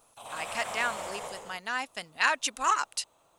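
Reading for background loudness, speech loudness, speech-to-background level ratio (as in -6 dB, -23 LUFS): -39.0 LUFS, -30.5 LUFS, 8.5 dB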